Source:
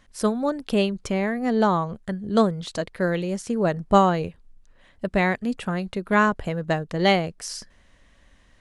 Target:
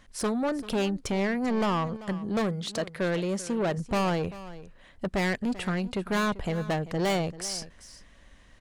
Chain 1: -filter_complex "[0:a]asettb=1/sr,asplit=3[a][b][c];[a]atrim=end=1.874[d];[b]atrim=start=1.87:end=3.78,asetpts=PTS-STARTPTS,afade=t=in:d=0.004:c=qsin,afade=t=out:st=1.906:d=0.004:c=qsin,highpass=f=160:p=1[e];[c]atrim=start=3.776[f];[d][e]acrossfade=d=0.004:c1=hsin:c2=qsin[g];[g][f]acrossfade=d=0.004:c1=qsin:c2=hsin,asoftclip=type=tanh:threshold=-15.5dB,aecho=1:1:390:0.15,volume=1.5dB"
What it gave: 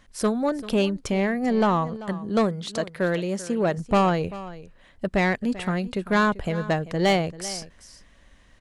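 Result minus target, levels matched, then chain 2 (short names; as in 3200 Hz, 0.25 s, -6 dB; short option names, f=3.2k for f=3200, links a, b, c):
soft clip: distortion -7 dB
-filter_complex "[0:a]asettb=1/sr,asplit=3[a][b][c];[a]atrim=end=1.874[d];[b]atrim=start=1.87:end=3.78,asetpts=PTS-STARTPTS,afade=t=in:d=0.004:c=qsin,afade=t=out:st=1.906:d=0.004:c=qsin,highpass=f=160:p=1[e];[c]atrim=start=3.776[f];[d][e]acrossfade=d=0.004:c1=hsin:c2=qsin[g];[g][f]acrossfade=d=0.004:c1=qsin:c2=hsin,asoftclip=type=tanh:threshold=-25dB,aecho=1:1:390:0.15,volume=1.5dB"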